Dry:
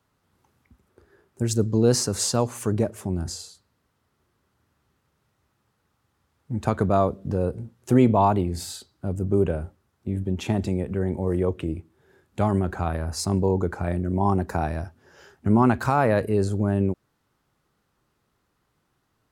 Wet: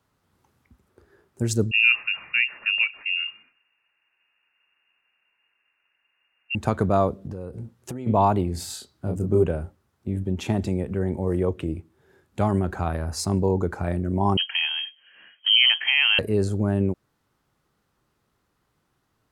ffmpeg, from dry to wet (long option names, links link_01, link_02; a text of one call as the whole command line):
ffmpeg -i in.wav -filter_complex "[0:a]asettb=1/sr,asplit=3[link_01][link_02][link_03];[link_01]atrim=end=1.714[link_04];[link_02]atrim=start=1.71:end=6.55,asetpts=PTS-STARTPTS,afade=type=in:duration=0.004:curve=qsin,afade=type=out:start_time=4.836:duration=0.004:curve=qsin,lowpass=frequency=2500:width_type=q:width=0.5098,lowpass=frequency=2500:width_type=q:width=0.6013,lowpass=frequency=2500:width_type=q:width=0.9,lowpass=frequency=2500:width_type=q:width=2.563,afreqshift=-2900[link_05];[link_03]atrim=start=6.546[link_06];[link_04][link_05]acrossfade=duration=0.004:curve1=hsin:curve2=qsin[link_07];[link_07][link_06]acrossfade=duration=0.004:curve1=qsin:curve2=hsin,asplit=3[link_08][link_09][link_10];[link_08]afade=type=out:start_time=7.24:duration=0.02[link_11];[link_09]acompressor=threshold=-29dB:ratio=12:attack=3.2:release=140:knee=1:detection=peak,afade=type=in:start_time=7.24:duration=0.02,afade=type=out:start_time=8.06:duration=0.02[link_12];[link_10]afade=type=in:start_time=8.06:duration=0.02[link_13];[link_11][link_12][link_13]amix=inputs=3:normalize=0,asettb=1/sr,asplit=3[link_14][link_15][link_16];[link_14]atrim=end=8.674[link_17];[link_15]atrim=start=8.67:end=9.43,asetpts=PTS-STARTPTS,afade=type=in:duration=0.004:curve=qsin,afade=type=out:start_time=0.756:duration=0.004:curve=qsin,asplit=2[link_18][link_19];[link_19]adelay=28,volume=-4dB[link_20];[link_18][link_20]amix=inputs=2:normalize=0,atrim=end_sample=33516[link_21];[link_16]atrim=start=9.426[link_22];[link_17][link_21]acrossfade=duration=0.004:curve1=hsin:curve2=qsin[link_23];[link_23][link_22]acrossfade=duration=0.004:curve1=qsin:curve2=hsin,asettb=1/sr,asplit=3[link_24][link_25][link_26];[link_24]atrim=end=14.374[link_27];[link_25]atrim=start=14.37:end=16.19,asetpts=PTS-STARTPTS,afade=type=in:duration=0.004:curve=qsin,afade=type=out:start_time=1.816:duration=0.004:curve=qsin,lowpass=frequency=2800:width_type=q:width=0.5098,lowpass=frequency=2800:width_type=q:width=0.6013,lowpass=frequency=2800:width_type=q:width=0.9,lowpass=frequency=2800:width_type=q:width=2.563,afreqshift=-3300[link_28];[link_26]atrim=start=16.186[link_29];[link_27][link_28]acrossfade=duration=0.004:curve1=hsin:curve2=qsin[link_30];[link_30][link_29]acrossfade=duration=0.004:curve1=qsin:curve2=hsin" out.wav